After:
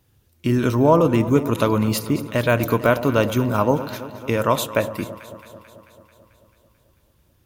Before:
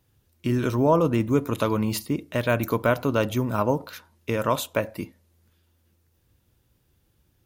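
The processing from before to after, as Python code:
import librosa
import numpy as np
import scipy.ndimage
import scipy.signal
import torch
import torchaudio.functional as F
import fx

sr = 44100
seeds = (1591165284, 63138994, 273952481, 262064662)

y = fx.echo_alternate(x, sr, ms=110, hz=970.0, feedback_pct=81, wet_db=-13.0)
y = F.gain(torch.from_numpy(y), 4.5).numpy()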